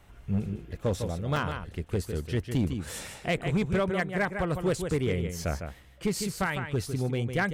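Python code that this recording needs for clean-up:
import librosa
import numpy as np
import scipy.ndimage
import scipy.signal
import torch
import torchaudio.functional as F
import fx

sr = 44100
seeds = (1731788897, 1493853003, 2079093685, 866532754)

y = fx.fix_declip(x, sr, threshold_db=-20.0)
y = fx.fix_interpolate(y, sr, at_s=(1.37,), length_ms=1.4)
y = fx.fix_echo_inverse(y, sr, delay_ms=154, level_db=-8.0)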